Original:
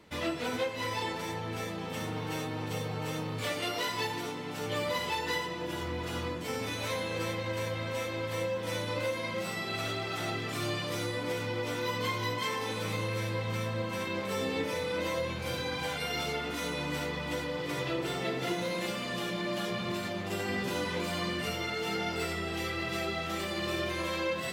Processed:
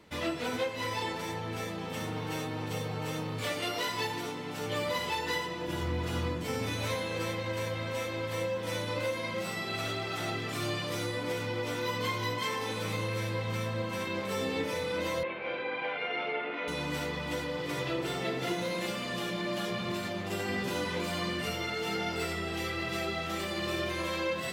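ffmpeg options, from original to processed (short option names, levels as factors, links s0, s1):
-filter_complex "[0:a]asettb=1/sr,asplit=3[s0][s1][s2];[s0]atrim=end=5.684[s3];[s1]atrim=start=5.68:end=6.95,asetpts=PTS-STARTPTS,afade=t=in:d=0.004:c=qsin,afade=t=out:st=1.266:d=0.004:c=qsin,lowshelf=f=180:g=7.5[s4];[s2]atrim=start=6.946[s5];[s3][s4]acrossfade=d=0.004:c1=hsin:c2=qsin[s6];[s6][s5]acrossfade=d=0.004:c1=qsin:c2=hsin,asettb=1/sr,asplit=3[s7][s8][s9];[s7]atrim=end=15.234[s10];[s8]atrim=start=15.23:end=16.68,asetpts=PTS-STARTPTS,afade=t=in:d=0.004:c=qsin,afade=t=out:st=1.446:d=0.004:c=qsin,highpass=350,equalizer=f=380:t=q:w=4:g=4,equalizer=f=620:t=q:w=4:g=4,equalizer=f=2300:t=q:w=4:g=5,lowpass=f=2800:w=0.5412,lowpass=f=2800:w=1.3066[s11];[s9]atrim=start=16.676[s12];[s10][s11]acrossfade=d=0.004:c1=hsin:c2=qsin[s13];[s13][s12]acrossfade=d=0.004:c1=qsin:c2=hsin"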